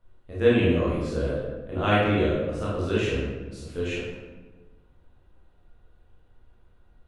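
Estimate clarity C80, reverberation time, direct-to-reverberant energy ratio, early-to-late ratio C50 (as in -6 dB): 2.5 dB, 1.3 s, -8.0 dB, -1.5 dB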